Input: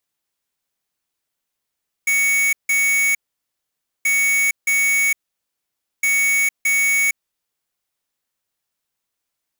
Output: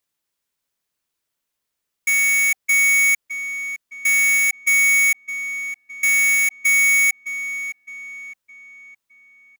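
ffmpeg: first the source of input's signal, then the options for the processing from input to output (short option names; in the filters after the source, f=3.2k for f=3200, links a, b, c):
-f lavfi -i "aevalsrc='0.141*(2*lt(mod(2230*t,1),0.5)-1)*clip(min(mod(mod(t,1.98),0.62),0.46-mod(mod(t,1.98),0.62))/0.005,0,1)*lt(mod(t,1.98),1.24)':d=5.94:s=44100"
-filter_complex "[0:a]bandreject=f=770:w=12,asplit=2[a][b];[b]adelay=613,lowpass=f=3.7k:p=1,volume=-11dB,asplit=2[c][d];[d]adelay=613,lowpass=f=3.7k:p=1,volume=0.47,asplit=2[e][f];[f]adelay=613,lowpass=f=3.7k:p=1,volume=0.47,asplit=2[g][h];[h]adelay=613,lowpass=f=3.7k:p=1,volume=0.47,asplit=2[i][j];[j]adelay=613,lowpass=f=3.7k:p=1,volume=0.47[k];[c][e][g][i][k]amix=inputs=5:normalize=0[l];[a][l]amix=inputs=2:normalize=0"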